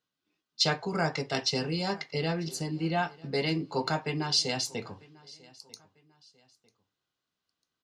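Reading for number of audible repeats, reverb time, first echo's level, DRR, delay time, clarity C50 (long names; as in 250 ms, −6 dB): 2, no reverb audible, −23.5 dB, no reverb audible, 946 ms, no reverb audible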